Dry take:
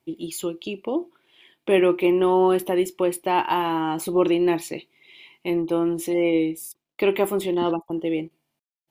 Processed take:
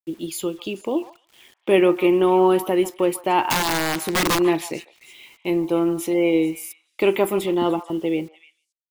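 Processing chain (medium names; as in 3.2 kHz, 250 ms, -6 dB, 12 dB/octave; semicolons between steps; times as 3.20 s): 3.50–4.39 s: integer overflow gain 17 dB; bit crusher 9-bit; repeats whose band climbs or falls 147 ms, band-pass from 1 kHz, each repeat 1.4 oct, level -10.5 dB; trim +2 dB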